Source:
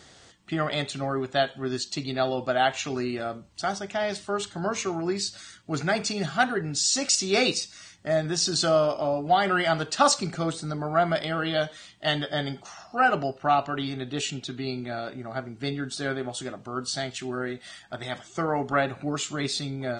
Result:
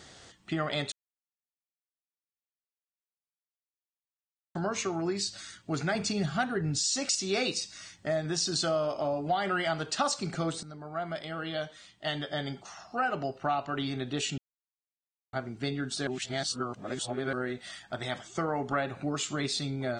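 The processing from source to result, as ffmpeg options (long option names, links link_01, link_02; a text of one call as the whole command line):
ffmpeg -i in.wav -filter_complex "[0:a]asettb=1/sr,asplit=3[link_01][link_02][link_03];[link_01]atrim=end=5.954[link_04];[link_02]atrim=start=5.95:end=6.79,asetpts=PTS-STARTPTS,afade=type=in:duration=0.004:curve=qsin,afade=type=out:start_time=0.836:duration=0.004:curve=qsin,lowshelf=frequency=170:gain=12[link_05];[link_03]atrim=start=6.786[link_06];[link_04][link_05]acrossfade=duration=0.004:curve1=hsin:curve2=qsin[link_07];[link_07][link_06]acrossfade=duration=0.004:curve1=qsin:curve2=hsin,asplit=8[link_08][link_09][link_10][link_11][link_12][link_13][link_14][link_15];[link_08]atrim=end=0.92,asetpts=PTS-STARTPTS,afade=type=out:start_time=0.916:duration=0.004:curve=hsin[link_16];[link_09]atrim=start=0.92:end=4.55,asetpts=PTS-STARTPTS,volume=0[link_17];[link_10]atrim=start=4.55:end=10.63,asetpts=PTS-STARTPTS,afade=type=in:duration=0.004:curve=hsin,afade=type=out:start_time=6.076:duration=0.004:curve=hsin:silence=0.177828[link_18];[link_11]atrim=start=10.63:end=14.38,asetpts=PTS-STARTPTS,afade=type=in:duration=3.13:silence=0.177828,afade=type=out:start_time=3.746:duration=0.004:curve=hsin[link_19];[link_12]atrim=start=14.38:end=15.33,asetpts=PTS-STARTPTS,volume=0[link_20];[link_13]atrim=start=15.33:end=16.072,asetpts=PTS-STARTPTS,afade=type=in:duration=0.004:curve=hsin[link_21];[link_14]atrim=start=16.068:end=17.332,asetpts=PTS-STARTPTS,areverse[link_22];[link_15]atrim=start=17.328[link_23];[link_16][link_17][link_18][link_19][link_20][link_21]concat=n=6:v=0:a=1[link_24];[link_24][link_22]acrossfade=duration=0.004:curve1=hsin:curve2=hsin[link_25];[link_25][link_23]acrossfade=duration=0.004:curve1=hsin:curve2=hsin,acompressor=threshold=-29dB:ratio=2.5" out.wav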